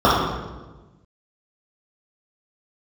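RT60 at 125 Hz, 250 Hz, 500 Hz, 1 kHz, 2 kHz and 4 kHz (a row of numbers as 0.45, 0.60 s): 1.6, 1.5, 1.3, 1.1, 1.0, 0.85 s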